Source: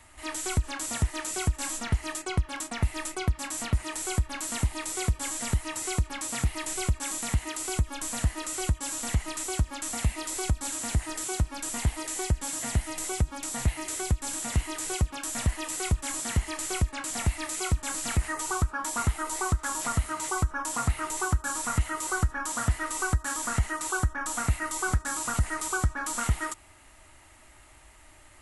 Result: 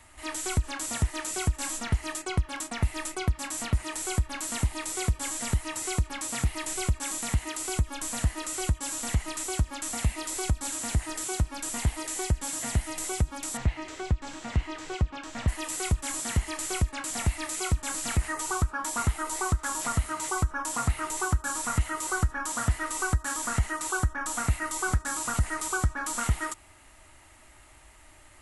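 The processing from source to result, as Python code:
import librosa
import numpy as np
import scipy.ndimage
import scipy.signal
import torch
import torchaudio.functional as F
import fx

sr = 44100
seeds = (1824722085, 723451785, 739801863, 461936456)

y = fx.air_absorb(x, sr, metres=160.0, at=(13.57, 15.48))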